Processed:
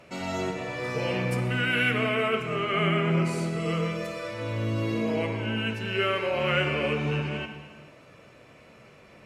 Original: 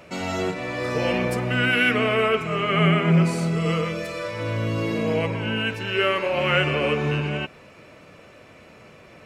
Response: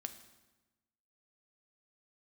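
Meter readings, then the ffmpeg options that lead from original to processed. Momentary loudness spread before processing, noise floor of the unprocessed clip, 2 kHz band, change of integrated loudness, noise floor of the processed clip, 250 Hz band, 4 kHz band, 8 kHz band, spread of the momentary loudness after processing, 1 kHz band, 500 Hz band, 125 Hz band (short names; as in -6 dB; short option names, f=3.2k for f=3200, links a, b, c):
9 LU, -48 dBFS, -4.5 dB, -4.5 dB, -53 dBFS, -5.0 dB, -4.5 dB, -4.5 dB, 9 LU, -4.5 dB, -4.5 dB, -5.0 dB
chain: -filter_complex "[1:a]atrim=start_sample=2205,afade=t=out:st=0.33:d=0.01,atrim=end_sample=14994,asetrate=26019,aresample=44100[a];[0:a][a]afir=irnorm=-1:irlink=0,volume=-4.5dB"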